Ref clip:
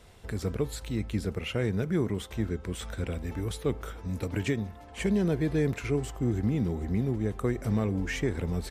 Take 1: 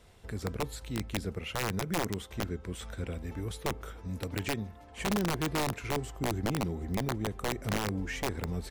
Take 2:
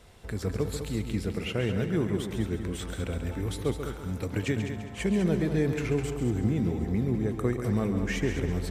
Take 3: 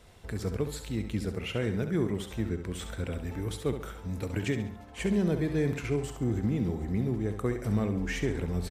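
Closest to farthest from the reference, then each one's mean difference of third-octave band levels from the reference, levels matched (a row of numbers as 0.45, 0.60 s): 3, 2, 1; 2.0, 3.5, 5.0 dB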